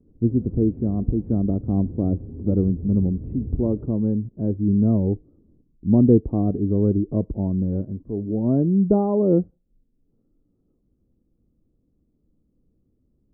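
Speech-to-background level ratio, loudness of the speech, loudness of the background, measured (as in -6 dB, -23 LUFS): 15.0 dB, -22.0 LUFS, -37.0 LUFS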